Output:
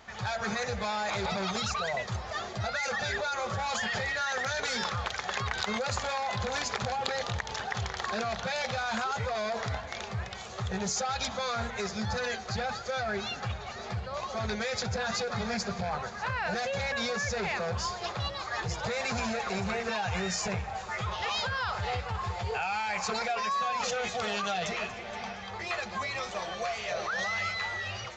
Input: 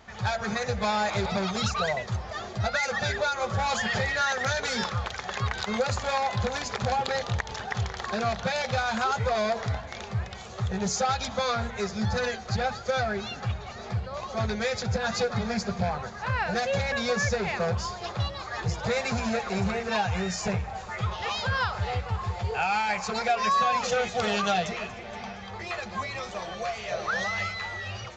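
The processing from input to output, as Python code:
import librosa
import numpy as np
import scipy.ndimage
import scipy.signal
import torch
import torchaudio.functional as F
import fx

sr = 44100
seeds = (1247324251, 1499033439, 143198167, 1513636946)

p1 = fx.low_shelf(x, sr, hz=430.0, db=-6.0)
p2 = fx.over_compress(p1, sr, threshold_db=-32.0, ratio=-0.5)
p3 = p1 + (p2 * 10.0 ** (0.5 / 20.0))
p4 = p3 + 10.0 ** (-23.5 / 20.0) * np.pad(p3, (int(604 * sr / 1000.0), 0))[:len(p3)]
y = p4 * 10.0 ** (-6.5 / 20.0)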